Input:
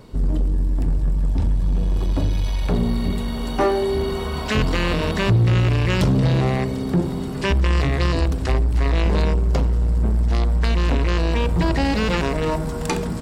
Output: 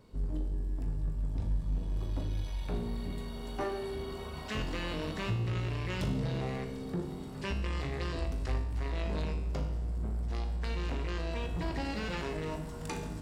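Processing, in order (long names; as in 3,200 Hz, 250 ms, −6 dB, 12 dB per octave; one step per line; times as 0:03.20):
tuned comb filter 51 Hz, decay 0.84 s, harmonics all, mix 80%
level −5.5 dB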